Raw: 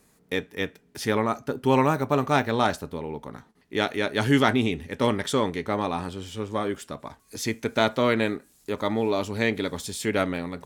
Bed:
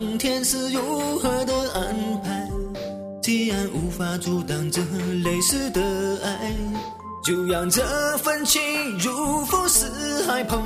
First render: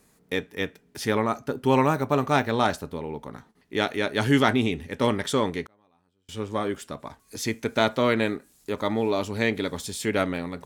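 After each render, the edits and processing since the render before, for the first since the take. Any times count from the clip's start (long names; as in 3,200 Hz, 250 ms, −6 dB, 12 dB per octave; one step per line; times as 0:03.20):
0:05.63–0:06.29: gate with flip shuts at −30 dBFS, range −37 dB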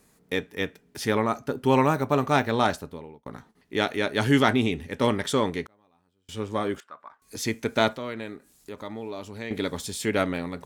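0:02.69–0:03.26: fade out
0:06.80–0:07.22: resonant band-pass 1,300 Hz, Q 2.7
0:07.93–0:09.51: downward compressor 1.5 to 1, threshold −51 dBFS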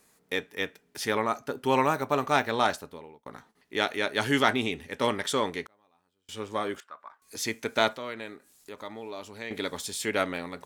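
low-shelf EQ 310 Hz −11.5 dB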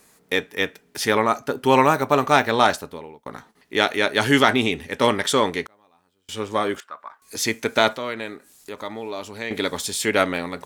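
level +8 dB
brickwall limiter −1 dBFS, peak gain reduction 3 dB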